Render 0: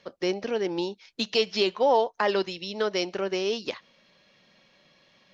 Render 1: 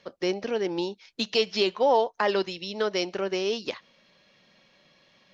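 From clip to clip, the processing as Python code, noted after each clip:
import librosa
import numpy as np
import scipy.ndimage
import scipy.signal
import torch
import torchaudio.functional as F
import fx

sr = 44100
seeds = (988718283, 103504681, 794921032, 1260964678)

y = x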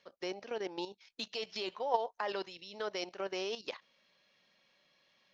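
y = fx.low_shelf(x, sr, hz=420.0, db=-9.0)
y = fx.level_steps(y, sr, step_db=11)
y = fx.dynamic_eq(y, sr, hz=760.0, q=0.94, threshold_db=-46.0, ratio=4.0, max_db=5)
y = y * 10.0 ** (-5.5 / 20.0)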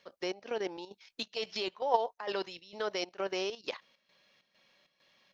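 y = fx.chopper(x, sr, hz=2.2, depth_pct=65, duty_pct=70)
y = y * 10.0 ** (3.5 / 20.0)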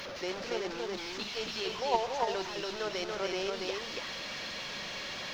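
y = fx.delta_mod(x, sr, bps=32000, step_db=-33.5)
y = y + 10.0 ** (-3.0 / 20.0) * np.pad(y, (int(284 * sr / 1000.0), 0))[:len(y)]
y = np.sign(y) * np.maximum(np.abs(y) - 10.0 ** (-58.5 / 20.0), 0.0)
y = y * 10.0 ** (-1.0 / 20.0)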